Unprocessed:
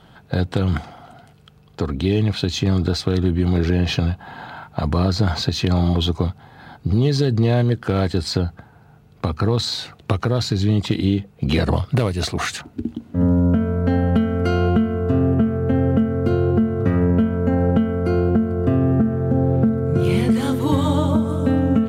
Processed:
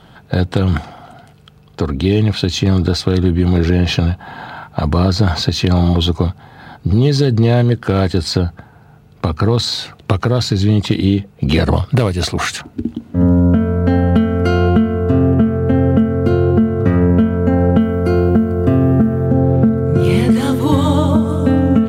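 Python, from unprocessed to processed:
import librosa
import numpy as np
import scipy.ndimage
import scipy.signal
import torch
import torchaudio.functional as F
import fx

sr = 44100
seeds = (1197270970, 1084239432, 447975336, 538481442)

y = fx.high_shelf(x, sr, hz=7500.0, db=6.5, at=(17.8, 19.27))
y = y * librosa.db_to_amplitude(5.0)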